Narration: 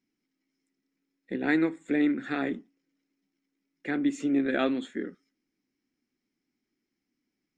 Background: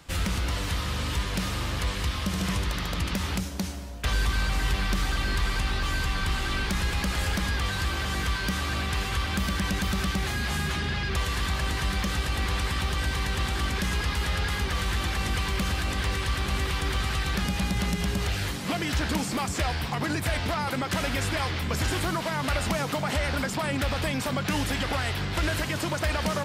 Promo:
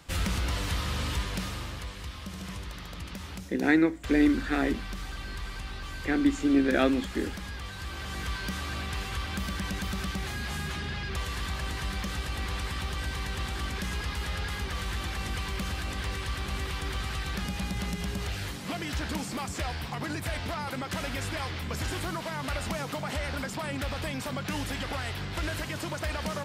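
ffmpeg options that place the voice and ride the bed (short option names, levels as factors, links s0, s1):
-filter_complex "[0:a]adelay=2200,volume=1.33[s0];[1:a]volume=1.58,afade=t=out:st=1.04:d=0.85:silence=0.334965,afade=t=in:st=7.76:d=0.58:silence=0.530884[s1];[s0][s1]amix=inputs=2:normalize=0"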